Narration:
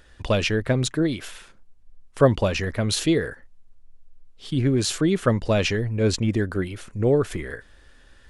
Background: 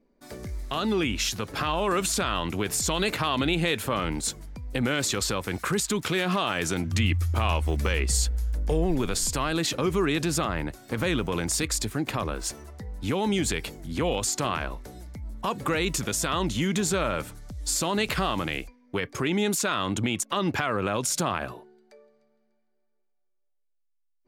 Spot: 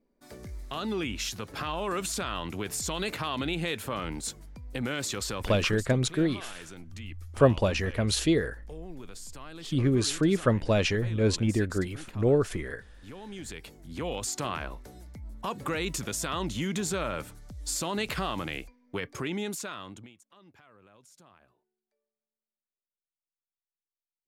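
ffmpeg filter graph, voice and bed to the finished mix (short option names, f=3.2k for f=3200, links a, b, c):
-filter_complex "[0:a]adelay=5200,volume=-3.5dB[a];[1:a]volume=7dB,afade=t=out:st=5.37:d=0.53:silence=0.251189,afade=t=in:st=13.28:d=1.11:silence=0.223872,afade=t=out:st=19.09:d=1.06:silence=0.0501187[b];[a][b]amix=inputs=2:normalize=0"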